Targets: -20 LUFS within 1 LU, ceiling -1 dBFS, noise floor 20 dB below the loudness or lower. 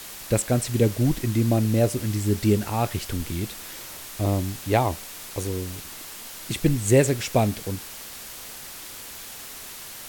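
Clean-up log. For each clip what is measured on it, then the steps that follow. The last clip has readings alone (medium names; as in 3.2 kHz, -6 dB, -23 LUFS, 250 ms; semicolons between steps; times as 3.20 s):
noise floor -40 dBFS; noise floor target -45 dBFS; loudness -24.5 LUFS; peak level -5.5 dBFS; loudness target -20.0 LUFS
-> noise reduction 6 dB, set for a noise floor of -40 dBFS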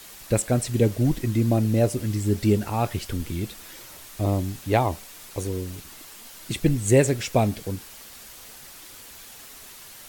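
noise floor -45 dBFS; loudness -24.5 LUFS; peak level -6.0 dBFS; loudness target -20.0 LUFS
-> trim +4.5 dB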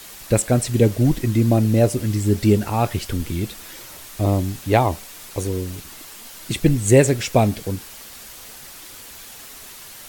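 loudness -20.0 LUFS; peak level -1.5 dBFS; noise floor -40 dBFS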